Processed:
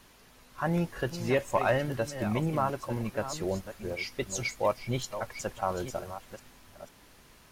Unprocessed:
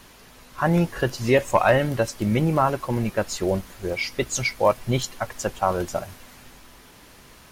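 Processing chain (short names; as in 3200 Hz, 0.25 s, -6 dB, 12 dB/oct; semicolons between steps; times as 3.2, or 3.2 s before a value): reverse delay 0.492 s, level -11 dB; gain -8.5 dB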